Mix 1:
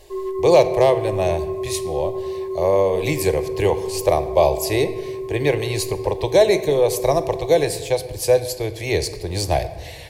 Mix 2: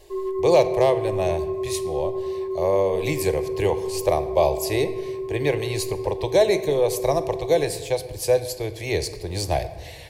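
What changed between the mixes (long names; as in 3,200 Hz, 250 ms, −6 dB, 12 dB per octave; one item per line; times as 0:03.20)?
speech −3.5 dB
background: add high-frequency loss of the air 380 metres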